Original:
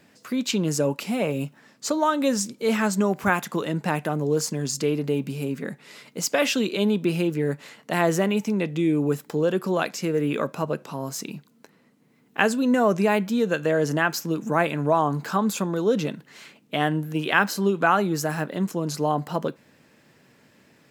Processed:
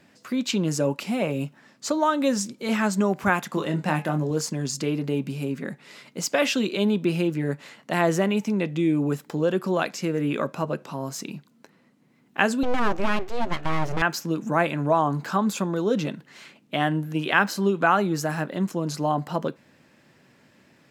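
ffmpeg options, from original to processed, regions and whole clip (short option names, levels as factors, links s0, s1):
-filter_complex "[0:a]asettb=1/sr,asplit=3[s0][s1][s2];[s0]atrim=end=3.494[s3];[s1]atrim=start=3.49:end=4.31,asetpts=PTS-STARTPTS,afade=t=in:d=0.004:c=qsin,afade=t=out:st=0.816:d=0.004:c=qsin,asplit=2[s4][s5];[s5]adelay=26,volume=0.447[s6];[s4][s6]amix=inputs=2:normalize=0,atrim=end_sample=36162,bandreject=f=211.2:t=h:w=4,bandreject=f=422.4:t=h:w=4,bandreject=f=633.6:t=h:w=4,bandreject=f=844.8:t=h:w=4,bandreject=f=1056:t=h:w=4,bandreject=f=1267.2:t=h:w=4,bandreject=f=1478.4:t=h:w=4,bandreject=f=1689.6:t=h:w=4,bandreject=f=1900.8:t=h:w=4,bandreject=f=2112:t=h:w=4,bandreject=f=2323.2:t=h:w=4,bandreject=f=2534.4:t=h:w=4,bandreject=f=2745.6:t=h:w=4,bandreject=f=2956.8:t=h:w=4,bandreject=f=3168:t=h:w=4,bandreject=f=3379.2:t=h:w=4,bandreject=f=3590.4:t=h:w=4,bandreject=f=3801.6:t=h:w=4,bandreject=f=4012.8:t=h:w=4,bandreject=f=4224:t=h:w=4,bandreject=f=4435.2:t=h:w=4,bandreject=f=4646.4:t=h:w=4,bandreject=f=4857.6:t=h:w=4,bandreject=f=5068.8:t=h:w=4,bandreject=f=5280:t=h:w=4,bandreject=f=5491.2:t=h:w=4,bandreject=f=5702.4:t=h:w=4,bandreject=f=5913.6:t=h:w=4,bandreject=f=6124.8:t=h:w=4,bandreject=f=6336:t=h:w=4,bandreject=f=6547.2:t=h:w=4,bandreject=f=6758.4:t=h:w=4,bandreject=f=6969.6:t=h:w=4,bandreject=f=7180.8:t=h:w=4[s7];[s2]atrim=start=4.306[s8];[s3][s7]acrossfade=d=0.004:c1=hsin:c2=qsin[s9];[s9][s8]acrossfade=d=0.004:c1=qsin:c2=hsin,asettb=1/sr,asplit=3[s10][s11][s12];[s10]atrim=end=12.634[s13];[s11]atrim=start=12.63:end=14.02,asetpts=PTS-STARTPTS,afade=t=in:d=0.004:c=qsin,afade=t=out:st=1.386:d=0.004:c=qsin,highshelf=f=4500:g=-11,aeval=exprs='abs(val(0))':c=same[s14];[s12]atrim=start=14.016[s15];[s13][s14]acrossfade=d=0.004:c1=hsin:c2=qsin[s16];[s16][s15]acrossfade=d=0.004:c1=qsin:c2=hsin,highshelf=f=10000:g=-8,bandreject=f=450:w=14"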